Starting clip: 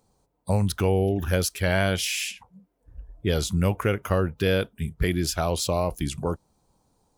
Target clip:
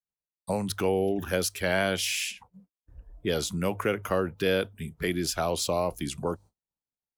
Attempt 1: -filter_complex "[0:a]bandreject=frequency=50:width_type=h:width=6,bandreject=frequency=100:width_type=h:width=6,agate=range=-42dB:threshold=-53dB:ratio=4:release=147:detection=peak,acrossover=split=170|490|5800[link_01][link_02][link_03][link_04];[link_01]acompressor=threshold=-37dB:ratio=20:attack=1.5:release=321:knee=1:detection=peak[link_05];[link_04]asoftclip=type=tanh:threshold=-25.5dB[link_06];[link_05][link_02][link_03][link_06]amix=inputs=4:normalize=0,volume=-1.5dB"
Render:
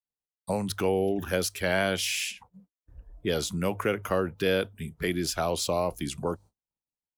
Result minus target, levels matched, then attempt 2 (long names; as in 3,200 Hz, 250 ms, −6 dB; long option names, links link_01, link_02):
soft clipping: distortion +9 dB
-filter_complex "[0:a]bandreject=frequency=50:width_type=h:width=6,bandreject=frequency=100:width_type=h:width=6,agate=range=-42dB:threshold=-53dB:ratio=4:release=147:detection=peak,acrossover=split=170|490|5800[link_01][link_02][link_03][link_04];[link_01]acompressor=threshold=-37dB:ratio=20:attack=1.5:release=321:knee=1:detection=peak[link_05];[link_04]asoftclip=type=tanh:threshold=-19dB[link_06];[link_05][link_02][link_03][link_06]amix=inputs=4:normalize=0,volume=-1.5dB"